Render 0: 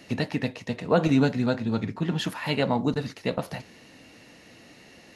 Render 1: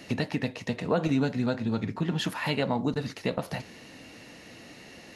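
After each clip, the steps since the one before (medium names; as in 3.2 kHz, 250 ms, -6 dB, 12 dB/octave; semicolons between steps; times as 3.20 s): compression 2:1, threshold -31 dBFS, peak gain reduction 9 dB; trim +3 dB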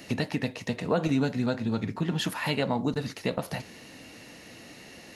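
treble shelf 9.5 kHz +8.5 dB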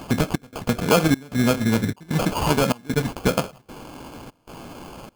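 trance gate "xxxx..xxx" 171 bpm -24 dB; sample-rate reducer 1.9 kHz, jitter 0%; trim +8.5 dB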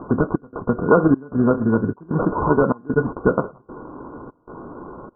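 rippled Chebyshev low-pass 1.5 kHz, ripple 9 dB; trim +7.5 dB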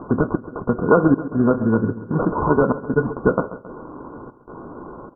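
feedback delay 135 ms, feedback 53%, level -15 dB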